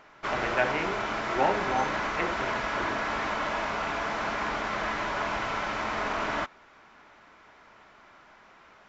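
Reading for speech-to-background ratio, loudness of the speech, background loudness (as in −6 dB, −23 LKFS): −2.5 dB, −32.5 LKFS, −30.0 LKFS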